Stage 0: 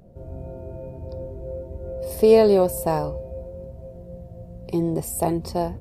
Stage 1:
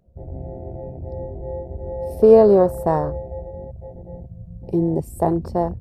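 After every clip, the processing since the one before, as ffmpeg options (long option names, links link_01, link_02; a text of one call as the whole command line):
ffmpeg -i in.wav -af "afwtdn=0.0282,volume=3.5dB" out.wav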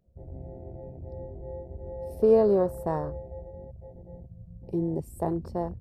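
ffmpeg -i in.wav -af "equalizer=frequency=740:width_type=o:width=0.59:gain=-3,volume=-8.5dB" out.wav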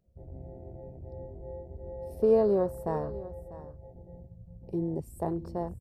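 ffmpeg -i in.wav -af "aecho=1:1:646:0.15,volume=-3dB" out.wav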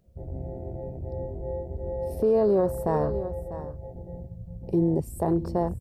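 ffmpeg -i in.wav -af "alimiter=limit=-24dB:level=0:latency=1:release=41,volume=9dB" out.wav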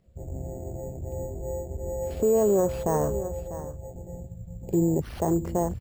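ffmpeg -i in.wav -af "acrusher=samples=6:mix=1:aa=0.000001" out.wav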